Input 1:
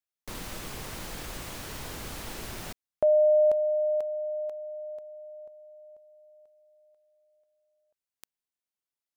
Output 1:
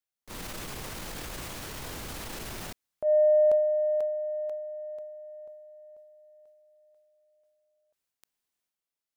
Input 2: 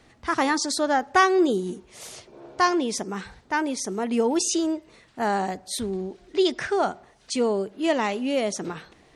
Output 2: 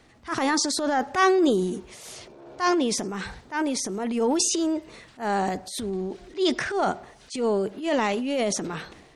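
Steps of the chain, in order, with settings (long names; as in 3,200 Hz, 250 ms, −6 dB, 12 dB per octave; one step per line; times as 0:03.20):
transient designer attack −10 dB, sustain +7 dB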